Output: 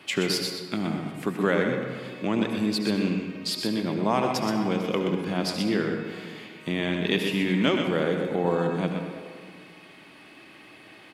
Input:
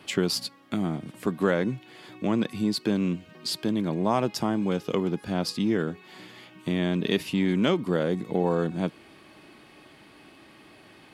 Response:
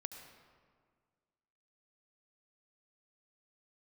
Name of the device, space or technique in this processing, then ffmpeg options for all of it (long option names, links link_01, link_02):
PA in a hall: -filter_complex "[0:a]highpass=frequency=130:poles=1,equalizer=frequency=2300:width_type=o:width=1.1:gain=5,aecho=1:1:124:0.447[link_01];[1:a]atrim=start_sample=2205[link_02];[link_01][link_02]afir=irnorm=-1:irlink=0,volume=3.5dB"